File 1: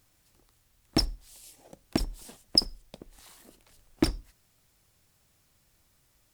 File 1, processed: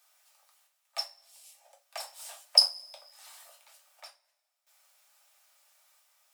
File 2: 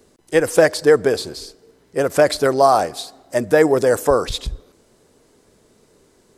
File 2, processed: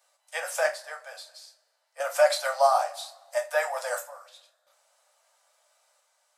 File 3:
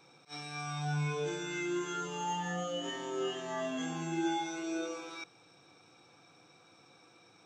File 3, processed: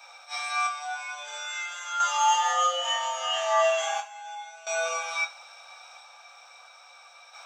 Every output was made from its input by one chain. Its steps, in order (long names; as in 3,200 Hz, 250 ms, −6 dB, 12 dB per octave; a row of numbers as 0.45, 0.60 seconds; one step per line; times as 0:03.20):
Butterworth high-pass 560 Hz 96 dB per octave
sample-and-hold tremolo 1.5 Hz, depth 90%
coupled-rooms reverb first 0.24 s, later 1.6 s, from −27 dB, DRR −0.5 dB
loudness normalisation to −27 LKFS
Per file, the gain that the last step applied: +1.5, −8.0, +14.0 decibels